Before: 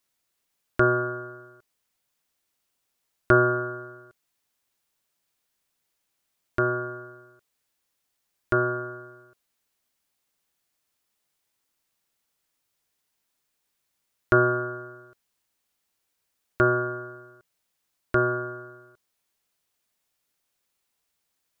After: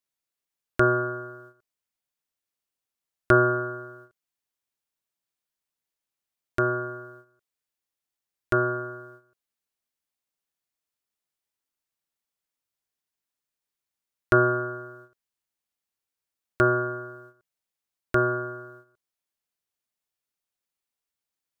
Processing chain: gate -48 dBFS, range -11 dB

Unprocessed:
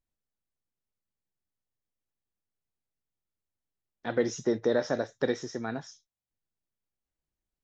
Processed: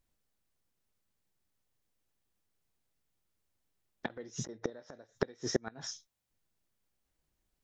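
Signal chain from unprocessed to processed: flipped gate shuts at -22 dBFS, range -32 dB; 4.06–4.7 negative-ratio compressor -44 dBFS, ratio -0.5; gain +8 dB

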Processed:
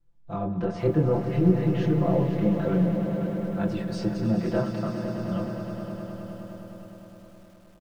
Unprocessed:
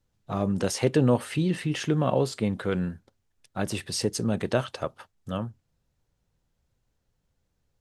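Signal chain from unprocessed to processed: treble ducked by the level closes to 1400 Hz, closed at -20 dBFS; high shelf 2300 Hz -11 dB; chorus voices 2, 0.55 Hz, delay 25 ms, depth 3.6 ms; low shelf 82 Hz +12 dB; comb 5.9 ms, depth 86%; swelling echo 0.103 s, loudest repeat 5, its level -12 dB; on a send at -10.5 dB: reverb RT60 0.40 s, pre-delay 3 ms; on the sum: lo-fi delay 0.49 s, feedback 55%, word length 8-bit, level -13 dB; gain -1 dB

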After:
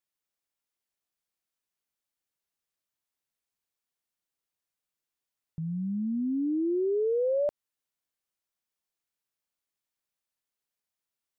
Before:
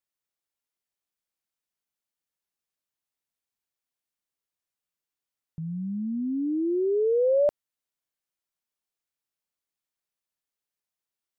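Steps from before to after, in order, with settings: compressor, threshold -25 dBFS, peak gain reduction 6 dB

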